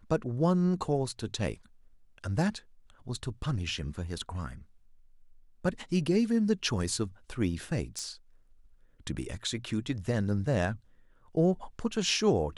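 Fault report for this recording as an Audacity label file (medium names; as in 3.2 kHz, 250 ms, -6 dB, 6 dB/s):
7.990000	7.990000	pop -23 dBFS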